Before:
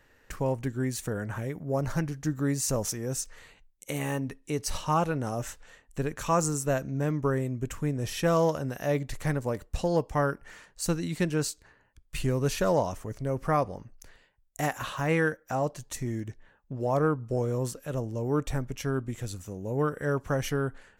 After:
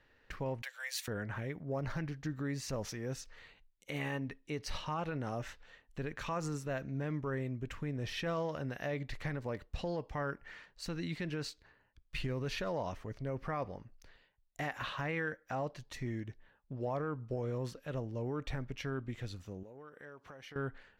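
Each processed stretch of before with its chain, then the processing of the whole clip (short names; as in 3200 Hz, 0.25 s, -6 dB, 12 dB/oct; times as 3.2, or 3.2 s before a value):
0.62–1.08 steep high-pass 490 Hz 96 dB/oct + tilt +4.5 dB/oct
19.63–20.56 HPF 390 Hz 6 dB/oct + compressor, threshold -43 dBFS
whole clip: resonant high shelf 5800 Hz -11.5 dB, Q 1.5; limiter -22 dBFS; dynamic EQ 2000 Hz, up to +5 dB, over -53 dBFS, Q 1.7; gain -6.5 dB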